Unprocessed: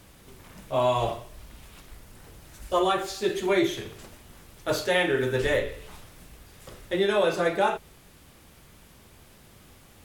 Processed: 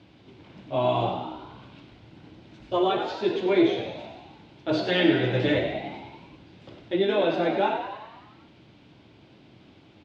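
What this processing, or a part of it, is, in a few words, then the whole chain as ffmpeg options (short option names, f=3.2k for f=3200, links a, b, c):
frequency-shifting delay pedal into a guitar cabinet: -filter_complex "[0:a]asettb=1/sr,asplit=3[a][b][c];[a]atrim=end=4.734[d];[b]atrim=start=4.73:end=5.59,asetpts=PTS-STARTPTS,afade=t=in:d=0.004:c=qsin,afade=t=out:st=0.856:d=0.004:c=qsin,aecho=1:1:6.2:0.99,atrim=end_sample=37926[e];[c]atrim=start=5.586[f];[d][e]acrossfade=d=0.004:c1=hsin:c2=qsin[g];[g][f]acrossfade=d=0.004:c1=qsin:c2=hsin,asplit=9[h][i][j][k][l][m][n][o][p];[i]adelay=96,afreqshift=65,volume=-8dB[q];[j]adelay=192,afreqshift=130,volume=-12dB[r];[k]adelay=288,afreqshift=195,volume=-16dB[s];[l]adelay=384,afreqshift=260,volume=-20dB[t];[m]adelay=480,afreqshift=325,volume=-24.1dB[u];[n]adelay=576,afreqshift=390,volume=-28.1dB[v];[o]adelay=672,afreqshift=455,volume=-32.1dB[w];[p]adelay=768,afreqshift=520,volume=-36.1dB[x];[h][q][r][s][t][u][v][w][x]amix=inputs=9:normalize=0,highpass=110,equalizer=f=120:t=q:w=4:g=4,equalizer=f=310:t=q:w=4:g=8,equalizer=f=480:t=q:w=4:g=-4,equalizer=f=1.2k:t=q:w=4:g=-8,equalizer=f=1.8k:t=q:w=4:g=-7,lowpass=f=4k:w=0.5412,lowpass=f=4k:w=1.3066"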